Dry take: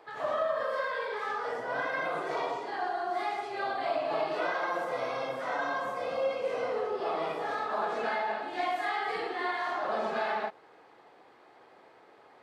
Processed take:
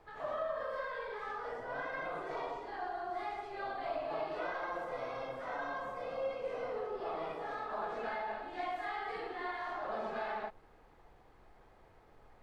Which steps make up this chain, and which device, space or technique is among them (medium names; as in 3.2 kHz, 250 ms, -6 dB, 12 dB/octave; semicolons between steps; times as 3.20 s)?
car interior (peaking EQ 110 Hz +4.5 dB 0.77 oct; treble shelf 3.7 kHz -7 dB; brown noise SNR 22 dB); trim -7 dB